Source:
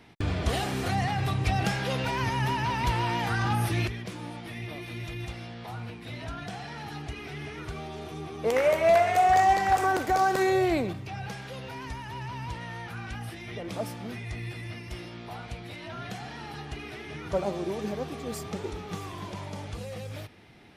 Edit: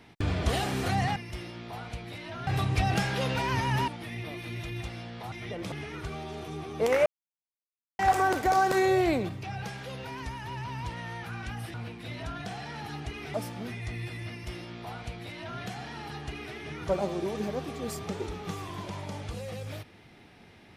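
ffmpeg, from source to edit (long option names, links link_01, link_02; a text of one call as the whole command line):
ffmpeg -i in.wav -filter_complex "[0:a]asplit=10[link_01][link_02][link_03][link_04][link_05][link_06][link_07][link_08][link_09][link_10];[link_01]atrim=end=1.162[link_11];[link_02]atrim=start=14.738:end=16.052[link_12];[link_03]atrim=start=1.158:end=2.572[link_13];[link_04]atrim=start=4.318:end=5.762[link_14];[link_05]atrim=start=13.378:end=13.782[link_15];[link_06]atrim=start=7.358:end=8.7,asetpts=PTS-STARTPTS,afade=type=out:start_time=1.338:duration=0.004:curve=hsin[link_16];[link_07]atrim=start=8.7:end=9.63,asetpts=PTS-STARTPTS,volume=0[link_17];[link_08]atrim=start=9.63:end=13.382,asetpts=PTS-STARTPTS,afade=type=in:duration=0.004:curve=hsin[link_18];[link_09]atrim=start=5.758:end=7.362[link_19];[link_10]atrim=start=13.778[link_20];[link_11][link_12]acrossfade=duration=0.004:curve1=hsin:curve2=hsin[link_21];[link_21][link_13]acrossfade=duration=0.004:curve1=hsin:curve2=hsin[link_22];[link_22][link_14]acrossfade=duration=0.004:curve1=hsin:curve2=hsin[link_23];[link_23][link_15]acrossfade=duration=0.004:curve1=hsin:curve2=hsin[link_24];[link_16][link_17][link_18]concat=n=3:v=0:a=1[link_25];[link_24][link_25]acrossfade=duration=0.004:curve1=hsin:curve2=hsin[link_26];[link_26][link_19]acrossfade=duration=0.004:curve1=hsin:curve2=hsin[link_27];[link_27][link_20]acrossfade=duration=0.004:curve1=hsin:curve2=hsin" out.wav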